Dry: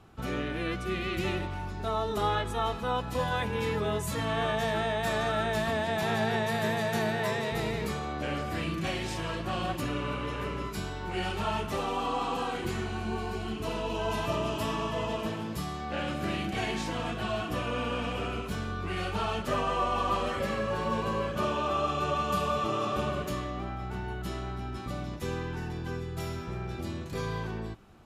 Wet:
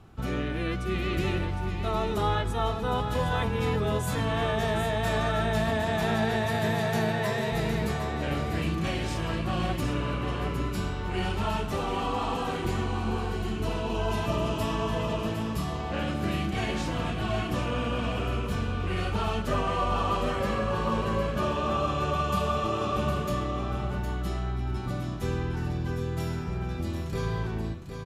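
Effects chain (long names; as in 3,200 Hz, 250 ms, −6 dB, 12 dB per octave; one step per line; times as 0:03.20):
low-shelf EQ 190 Hz +7 dB
on a send: single-tap delay 760 ms −7.5 dB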